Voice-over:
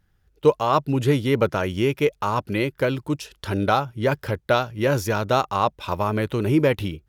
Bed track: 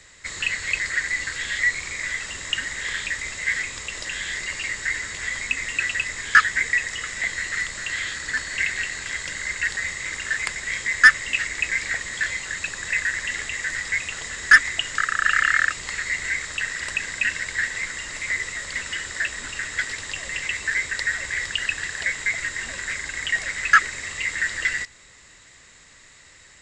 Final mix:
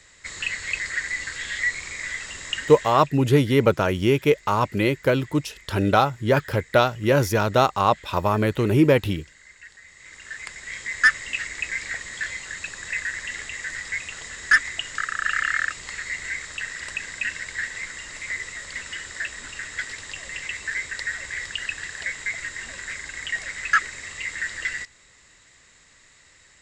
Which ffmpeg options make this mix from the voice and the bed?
ffmpeg -i stem1.wav -i stem2.wav -filter_complex "[0:a]adelay=2250,volume=2dB[link_01];[1:a]volume=13.5dB,afade=type=out:start_time=2.55:duration=0.56:silence=0.125893,afade=type=in:start_time=9.87:duration=1.24:silence=0.149624[link_02];[link_01][link_02]amix=inputs=2:normalize=0" out.wav

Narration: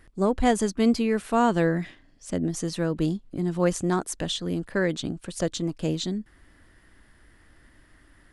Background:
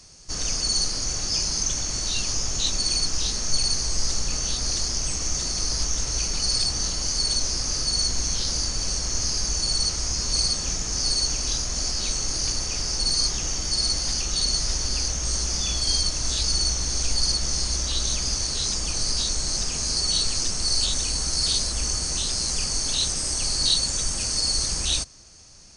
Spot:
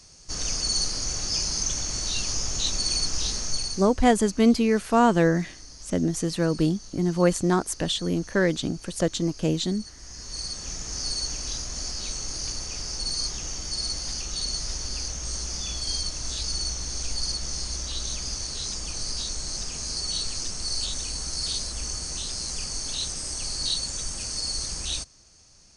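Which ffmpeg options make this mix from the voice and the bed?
ffmpeg -i stem1.wav -i stem2.wav -filter_complex "[0:a]adelay=3600,volume=2.5dB[link_01];[1:a]volume=12dB,afade=type=out:start_time=3.35:duration=0.6:silence=0.125893,afade=type=in:start_time=9.97:duration=0.94:silence=0.199526[link_02];[link_01][link_02]amix=inputs=2:normalize=0" out.wav

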